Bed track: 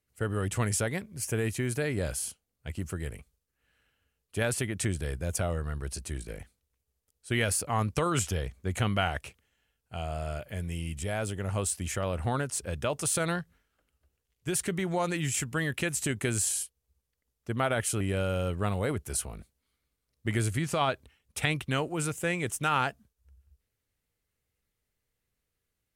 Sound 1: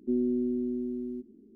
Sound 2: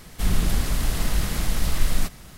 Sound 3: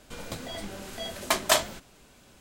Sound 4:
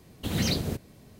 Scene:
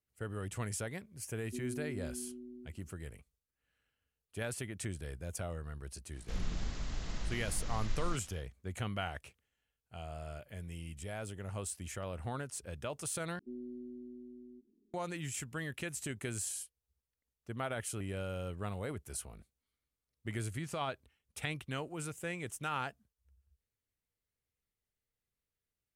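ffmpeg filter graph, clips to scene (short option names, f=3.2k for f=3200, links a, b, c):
-filter_complex "[1:a]asplit=2[a][b];[0:a]volume=-10dB[c];[2:a]aresample=16000,aresample=44100[d];[c]asplit=2[e][f];[e]atrim=end=13.394[g];[b]atrim=end=1.55,asetpts=PTS-STARTPTS,volume=-17.5dB[h];[f]atrim=start=14.936[i];[a]atrim=end=1.55,asetpts=PTS-STARTPTS,volume=-14dB,afade=t=in:d=0.004:c=hsin,afade=t=out:st=1.546:d=0.004:c=hsin,adelay=1450[j];[d]atrim=end=2.37,asetpts=PTS-STARTPTS,volume=-15.5dB,afade=t=in:d=0.1,afade=t=out:st=2.27:d=0.1,adelay=6090[k];[g][h]acrossfade=d=0.004:c1=hsin:c2=hsin[l];[l][i]acrossfade=d=0.004:c1=hsin:c2=hsin[m];[m][j][k]amix=inputs=3:normalize=0"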